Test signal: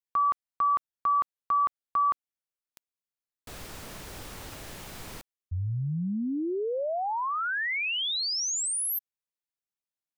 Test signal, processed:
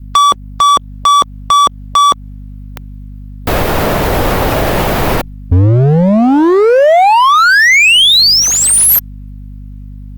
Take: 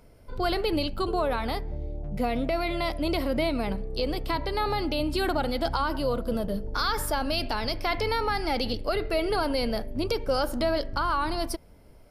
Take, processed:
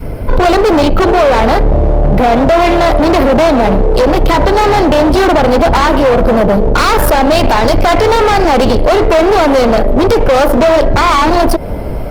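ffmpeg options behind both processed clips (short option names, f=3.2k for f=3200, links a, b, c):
-filter_complex "[0:a]equalizer=f=7.6k:t=o:w=2:g=-14.5,aeval=exprs='0.178*(cos(1*acos(clip(val(0)/0.178,-1,1)))-cos(1*PI/2))+0.0282*(cos(2*acos(clip(val(0)/0.178,-1,1)))-cos(2*PI/2))+0.00282*(cos(4*acos(clip(val(0)/0.178,-1,1)))-cos(4*PI/2))':c=same,acrossover=split=280|4900[a][b][c];[c]acrusher=bits=2:mode=log:mix=0:aa=0.000001[d];[a][b][d]amix=inputs=3:normalize=0,aeval=exprs='val(0)+0.000891*(sin(2*PI*50*n/s)+sin(2*PI*2*50*n/s)/2+sin(2*PI*3*50*n/s)/3+sin(2*PI*4*50*n/s)/4+sin(2*PI*5*50*n/s)/5)':c=same,asplit=2[e][f];[f]acompressor=threshold=-40dB:ratio=5:attack=0.62:release=236:detection=peak,volume=-2dB[g];[e][g]amix=inputs=2:normalize=0,volume=32.5dB,asoftclip=hard,volume=-32.5dB,adynamicequalizer=threshold=0.00355:dfrequency=610:dqfactor=1.1:tfrequency=610:tqfactor=1.1:attack=5:release=100:ratio=0.417:range=3:mode=boostabove:tftype=bell,alimiter=level_in=32dB:limit=-1dB:release=50:level=0:latency=1,volume=-3dB" -ar 48000 -c:a libopus -b:a 32k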